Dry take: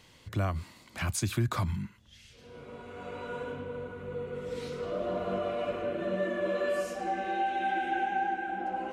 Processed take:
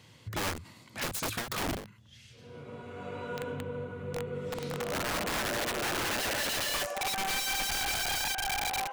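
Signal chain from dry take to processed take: high-pass sweep 110 Hz -> 890 Hz, 4.48–7.14; wrapped overs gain 27 dB; ending taper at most 120 dB/s

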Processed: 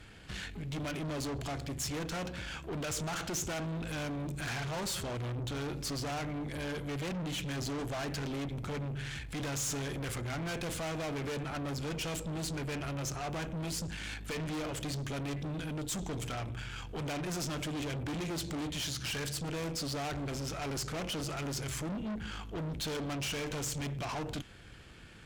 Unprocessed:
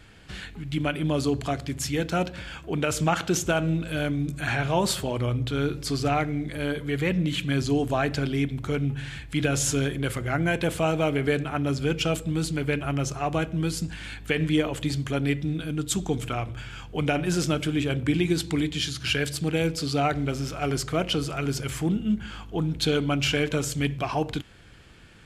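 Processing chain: tube stage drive 35 dB, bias 0.45; dynamic EQ 6200 Hz, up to +4 dB, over -55 dBFS, Q 1.9

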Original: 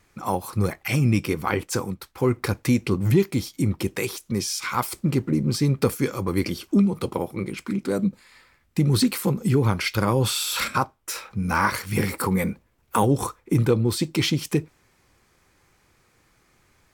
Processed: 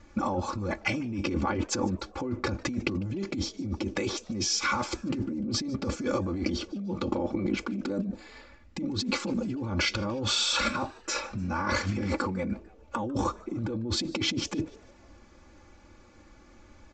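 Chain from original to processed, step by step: tilt shelf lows +5 dB; notch 1900 Hz, Q 12; comb 3.5 ms, depth 94%; limiter -15 dBFS, peak gain reduction 13 dB; negative-ratio compressor -28 dBFS, ratio -1; downsampling 16000 Hz; frequency-shifting echo 0.149 s, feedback 49%, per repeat +120 Hz, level -23.5 dB; gain -1.5 dB

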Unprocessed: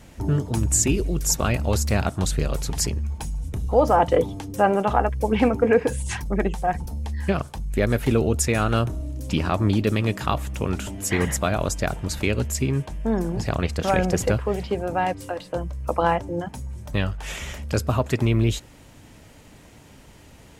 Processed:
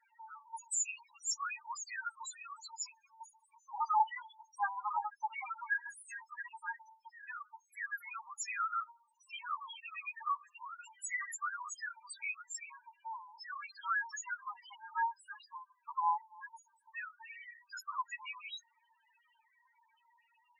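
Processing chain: added harmonics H 7 -28 dB, 8 -28 dB, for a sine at -5 dBFS; steep high-pass 880 Hz 72 dB/oct; loudest bins only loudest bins 2; gain +1 dB

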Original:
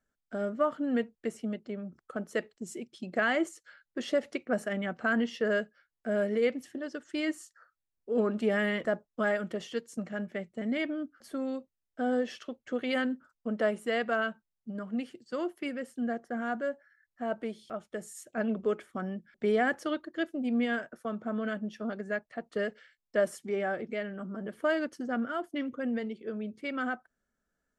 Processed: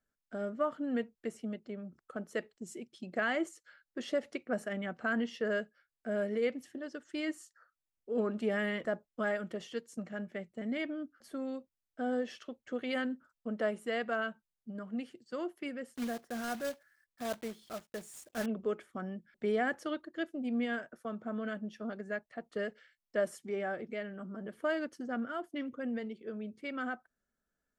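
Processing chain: 15.95–18.47 block floating point 3-bit; gain -4.5 dB

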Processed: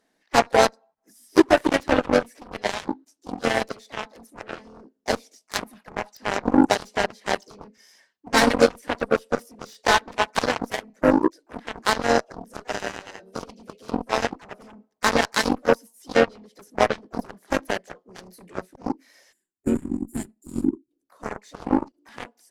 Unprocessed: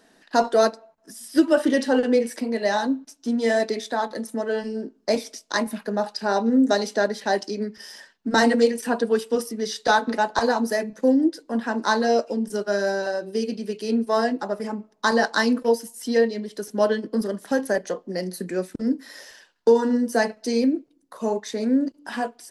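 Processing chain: harmoniser +3 st -6 dB, +4 st -16 dB, +7 st -18 dB; added harmonics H 3 -37 dB, 7 -16 dB, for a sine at -3 dBFS; spectral gain 19.32–20.91, 390–6800 Hz -22 dB; in parallel at -9.5 dB: overloaded stage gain 14.5 dB

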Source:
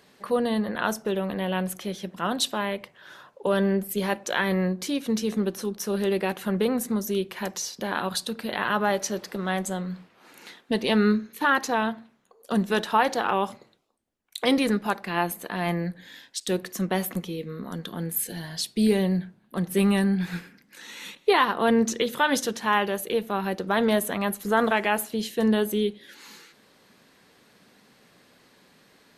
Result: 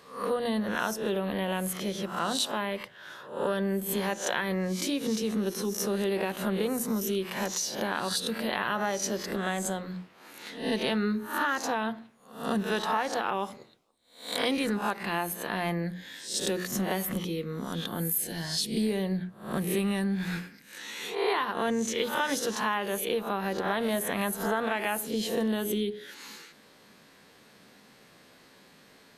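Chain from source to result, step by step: spectral swells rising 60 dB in 0.45 s; notches 60/120/180/240/300/360/420 Hz; compressor 4:1, threshold -26 dBFS, peak gain reduction 10.5 dB

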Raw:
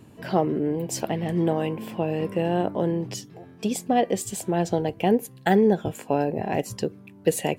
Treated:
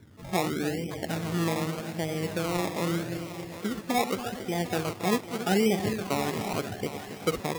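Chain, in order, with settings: regenerating reverse delay 0.138 s, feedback 73%, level -9 dB; bell 89 Hz +10.5 dB 0.46 oct; loudest bins only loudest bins 32; decimation with a swept rate 23×, swing 60% 0.83 Hz; thinning echo 0.755 s, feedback 51%, level -11.5 dB; gain -6 dB

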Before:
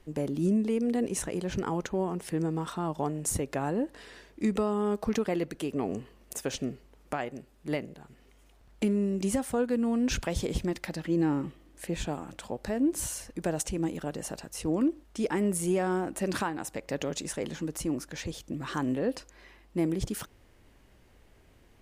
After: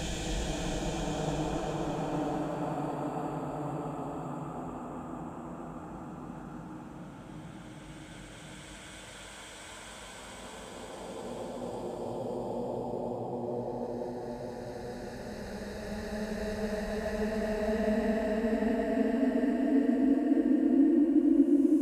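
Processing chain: Paulstretch 26×, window 0.25 s, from 12.03; mismatched tape noise reduction decoder only

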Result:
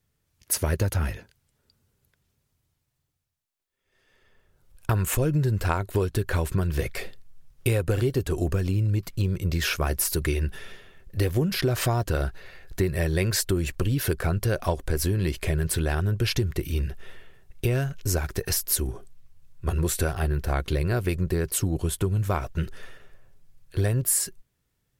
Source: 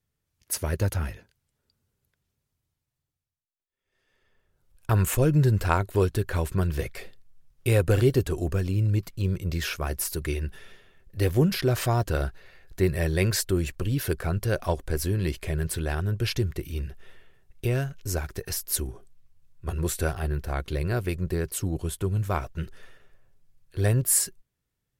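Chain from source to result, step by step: compressor, threshold -27 dBFS, peak gain reduction 11.5 dB; gain +6.5 dB

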